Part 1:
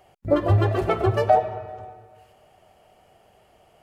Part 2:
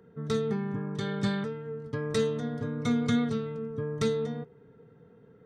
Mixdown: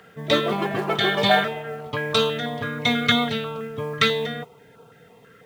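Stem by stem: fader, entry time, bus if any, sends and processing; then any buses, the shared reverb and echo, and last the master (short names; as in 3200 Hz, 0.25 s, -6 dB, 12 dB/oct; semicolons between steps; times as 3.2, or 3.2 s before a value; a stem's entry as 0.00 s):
-3.5 dB, 0.00 s, no send, elliptic high-pass 220 Hz
+1.5 dB, 0.00 s, no send, band shelf 1500 Hz +15 dB 3 oct; requantised 12-bit, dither triangular; stepped notch 6.1 Hz 820–1900 Hz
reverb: off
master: bell 3000 Hz +6.5 dB 2.3 oct; modulation noise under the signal 30 dB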